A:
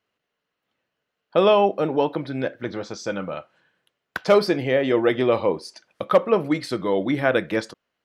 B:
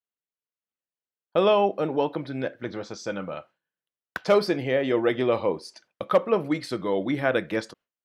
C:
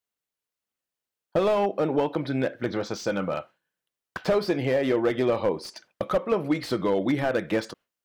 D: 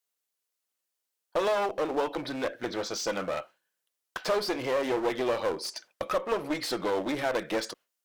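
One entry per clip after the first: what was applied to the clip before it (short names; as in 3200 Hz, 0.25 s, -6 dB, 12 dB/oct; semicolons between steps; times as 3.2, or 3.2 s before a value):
gate with hold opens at -34 dBFS; gain -3.5 dB
compressor 3:1, threshold -27 dBFS, peak gain reduction 10 dB; slew limiter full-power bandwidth 41 Hz; gain +6 dB
one-sided clip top -30 dBFS; tone controls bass -11 dB, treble +6 dB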